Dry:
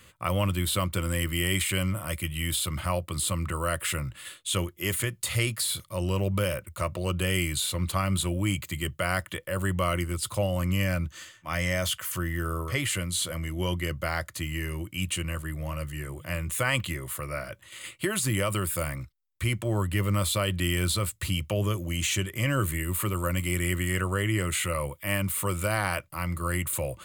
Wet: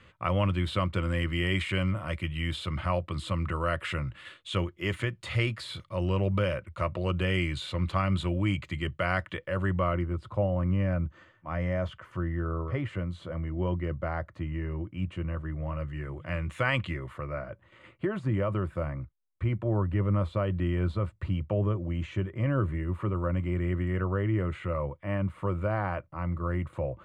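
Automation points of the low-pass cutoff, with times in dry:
9.46 s 2.7 kHz
10.09 s 1.1 kHz
15.27 s 1.1 kHz
16.69 s 2.7 kHz
17.50 s 1.1 kHz

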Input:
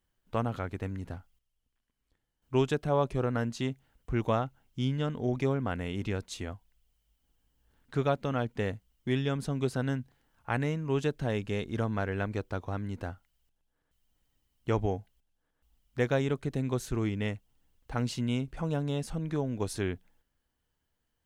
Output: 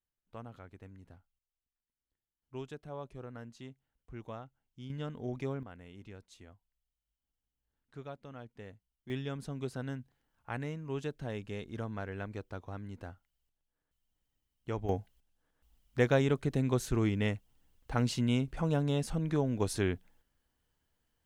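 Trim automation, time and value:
-16 dB
from 4.90 s -8 dB
from 5.63 s -17 dB
from 9.10 s -8 dB
from 14.89 s +1 dB

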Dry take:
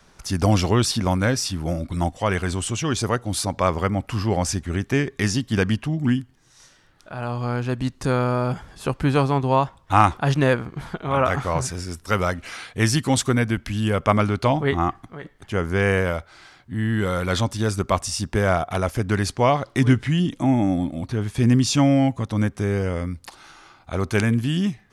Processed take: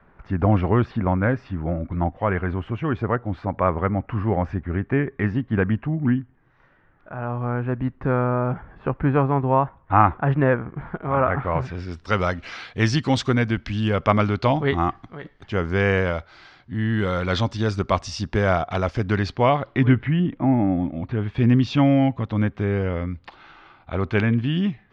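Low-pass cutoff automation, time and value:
low-pass 24 dB/octave
11.34 s 2 kHz
12.09 s 5 kHz
18.99 s 5 kHz
20.49 s 2 kHz
21.40 s 3.4 kHz

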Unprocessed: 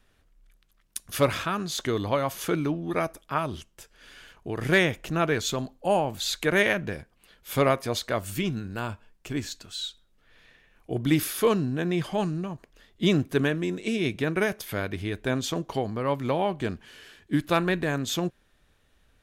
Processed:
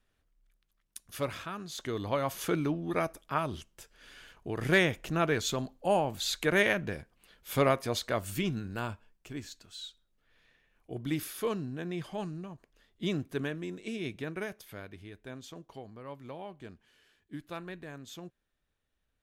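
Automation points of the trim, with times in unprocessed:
1.65 s -11 dB
2.30 s -3.5 dB
8.84 s -3.5 dB
9.31 s -10 dB
14.13 s -10 dB
15.19 s -17.5 dB

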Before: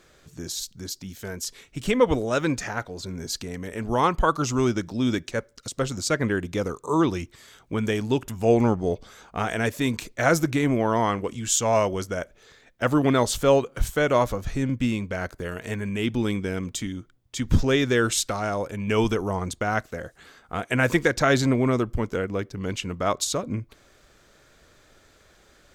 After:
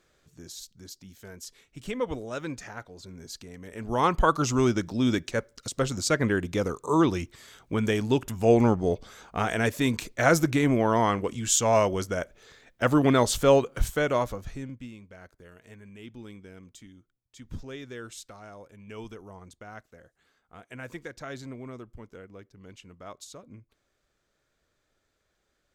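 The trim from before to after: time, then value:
3.58 s -10.5 dB
4.13 s -0.5 dB
13.74 s -0.5 dB
14.49 s -8.5 dB
14.91 s -19 dB

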